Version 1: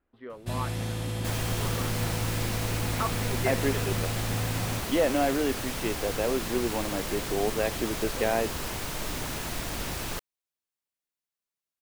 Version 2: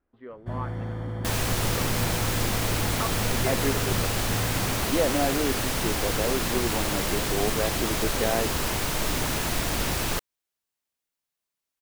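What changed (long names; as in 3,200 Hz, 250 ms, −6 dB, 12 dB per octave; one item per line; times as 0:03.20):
speech: add low-pass filter 2,000 Hz 6 dB per octave
first sound: add Savitzky-Golay smoothing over 41 samples
second sound +6.5 dB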